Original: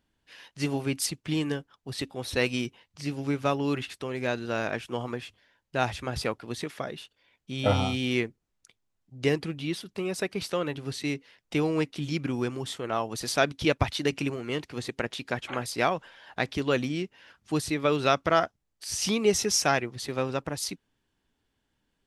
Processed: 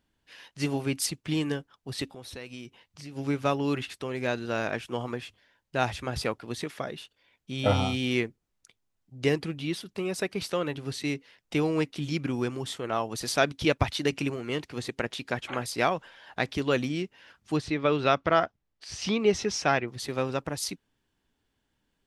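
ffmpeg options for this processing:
-filter_complex "[0:a]asplit=3[a][b][c];[a]afade=t=out:st=2.12:d=0.02[d];[b]acompressor=threshold=-42dB:ratio=3:attack=3.2:release=140:knee=1:detection=peak,afade=t=in:st=2.12:d=0.02,afade=t=out:st=3.15:d=0.02[e];[c]afade=t=in:st=3.15:d=0.02[f];[d][e][f]amix=inputs=3:normalize=0,asettb=1/sr,asplit=3[g][h][i];[g]atrim=end=17.564[j];[h]atrim=start=17.56:end=19.88,asetpts=PTS-STARTPTS,afade=t=in:d=0.004:c=qsin,afade=t=out:st=2.316:d=0.004:c=qsin,lowpass=4k[k];[i]atrim=start=19.876[l];[j][k]acrossfade=d=0.004:c1=hsin:c2=qsin[m];[m][l]acrossfade=d=0.004:c1=qsin:c2=hsin"

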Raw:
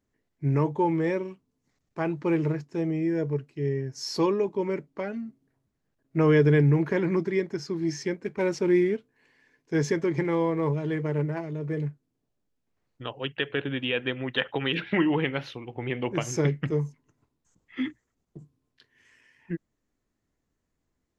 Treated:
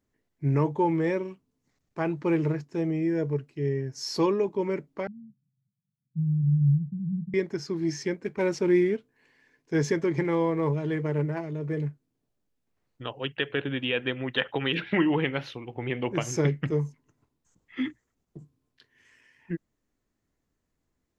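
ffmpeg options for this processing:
-filter_complex "[0:a]asettb=1/sr,asplit=3[a][b][c];[a]atrim=end=5.074[d];[b]atrim=start=5.07:end=7.34,asetpts=PTS-STARTPTS,afade=t=in:d=0.004:c=qsin,afade=t=out:st=2.266:d=0.004:c=qsin,asuperpass=centerf=150:order=8:qfactor=1.6[e];[c]atrim=start=7.336[f];[d][e]acrossfade=d=0.004:c1=hsin:c2=qsin[g];[g][f]acrossfade=d=0.004:c1=qsin:c2=hsin"

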